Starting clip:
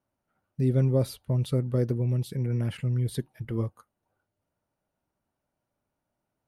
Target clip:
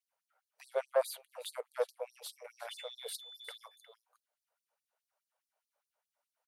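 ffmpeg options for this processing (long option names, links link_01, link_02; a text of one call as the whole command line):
ffmpeg -i in.wav -filter_complex "[0:a]asettb=1/sr,asplit=3[link_01][link_02][link_03];[link_01]atrim=end=0.754[link_04];[link_02]atrim=start=0.75:end=1.8,asetpts=PTS-STARTPTS,afade=type=in:duration=0.004:curve=qsin,afade=type=out:start_time=1.046:duration=0.004:curve=qsin,equalizer=frequency=5400:width_type=o:width=0.32:gain=-10.5[link_05];[link_03]atrim=start=1.796[link_06];[link_04][link_05]acrossfade=duration=0.004:curve1=hsin:curve2=qsin[link_07];[link_07][link_06]acrossfade=duration=0.004:curve1=qsin:curve2=hsin,asettb=1/sr,asplit=3[link_08][link_09][link_10];[link_08]atrim=end=2.694[link_11];[link_09]atrim=start=2.69:end=3.58,asetpts=PTS-STARTPTS,afade=type=in:duration=0.004:curve=qsin,afade=type=out:start_time=0.886:duration=0.004:curve=qsin,aeval=exprs='val(0)+0.00447*sin(2*PI*3500*n/s)':channel_layout=same[link_12];[link_10]atrim=start=3.576[link_13];[link_11][link_12]acrossfade=duration=0.004:curve1=hsin:curve2=qsin[link_14];[link_14][link_13]acrossfade=duration=0.004:curve1=qsin:curve2=hsin,aeval=exprs='(tanh(11.2*val(0)+0.7)-tanh(0.7))/11.2':channel_layout=same,aecho=1:1:359:0.168,afftfilt=real='re*gte(b*sr/1024,410*pow(4100/410,0.5+0.5*sin(2*PI*4.8*pts/sr)))':imag='im*gte(b*sr/1024,410*pow(4100/410,0.5+0.5*sin(2*PI*4.8*pts/sr)))':win_size=1024:overlap=0.75,volume=4dB" out.wav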